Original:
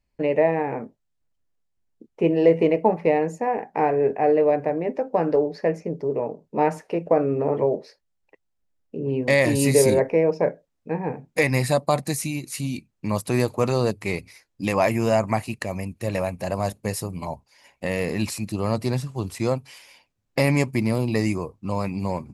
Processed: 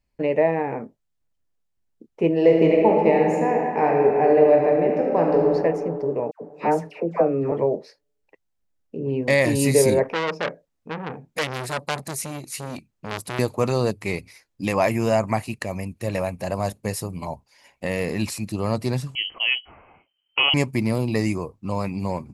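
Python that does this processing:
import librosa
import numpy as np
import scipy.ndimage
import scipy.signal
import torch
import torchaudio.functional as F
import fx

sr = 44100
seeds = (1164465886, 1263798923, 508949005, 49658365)

y = fx.reverb_throw(x, sr, start_s=2.35, length_s=3.17, rt60_s=2.4, drr_db=-0.5)
y = fx.dispersion(y, sr, late='lows', ms=102.0, hz=1100.0, at=(6.31, 7.52))
y = fx.transformer_sat(y, sr, knee_hz=3100.0, at=(10.03, 13.39))
y = fx.freq_invert(y, sr, carrier_hz=3100, at=(19.15, 20.54))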